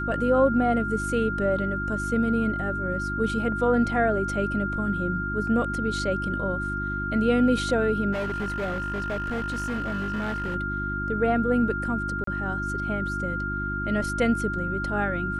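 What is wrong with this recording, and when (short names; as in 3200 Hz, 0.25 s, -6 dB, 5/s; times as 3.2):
hum 50 Hz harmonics 7 -32 dBFS
tone 1400 Hz -29 dBFS
8.12–10.56 clipped -25 dBFS
12.24–12.27 gap 33 ms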